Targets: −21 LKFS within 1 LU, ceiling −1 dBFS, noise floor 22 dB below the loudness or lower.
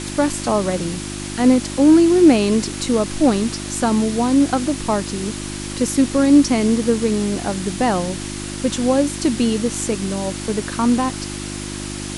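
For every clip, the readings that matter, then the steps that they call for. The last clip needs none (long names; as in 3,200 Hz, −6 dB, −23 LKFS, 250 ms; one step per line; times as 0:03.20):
mains hum 50 Hz; hum harmonics up to 350 Hz; level of the hum −28 dBFS; background noise floor −29 dBFS; target noise floor −41 dBFS; integrated loudness −18.5 LKFS; sample peak −2.5 dBFS; target loudness −21.0 LKFS
→ hum removal 50 Hz, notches 7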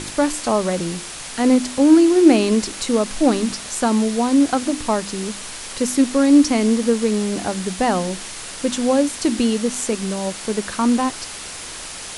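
mains hum none found; background noise floor −33 dBFS; target noise floor −41 dBFS
→ broadband denoise 8 dB, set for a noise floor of −33 dBFS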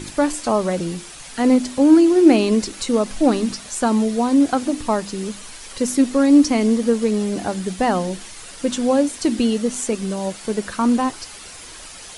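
background noise floor −38 dBFS; target noise floor −41 dBFS
→ broadband denoise 6 dB, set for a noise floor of −38 dBFS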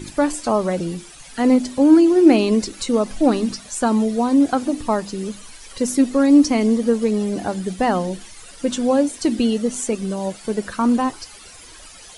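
background noise floor −42 dBFS; integrated loudness −18.5 LKFS; sample peak −1.5 dBFS; target loudness −21.0 LKFS
→ level −2.5 dB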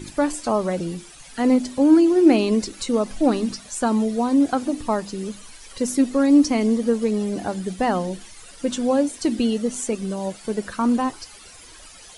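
integrated loudness −21.0 LKFS; sample peak −4.0 dBFS; background noise floor −45 dBFS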